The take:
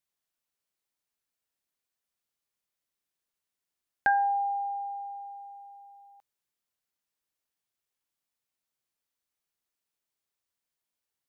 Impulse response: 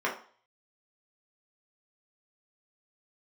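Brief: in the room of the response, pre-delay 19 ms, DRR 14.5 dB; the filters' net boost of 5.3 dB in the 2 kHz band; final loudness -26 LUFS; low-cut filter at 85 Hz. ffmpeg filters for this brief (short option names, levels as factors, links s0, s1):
-filter_complex "[0:a]highpass=85,equalizer=f=2000:t=o:g=7.5,asplit=2[s0][s1];[1:a]atrim=start_sample=2205,adelay=19[s2];[s1][s2]afir=irnorm=-1:irlink=0,volume=0.0562[s3];[s0][s3]amix=inputs=2:normalize=0,volume=1.26"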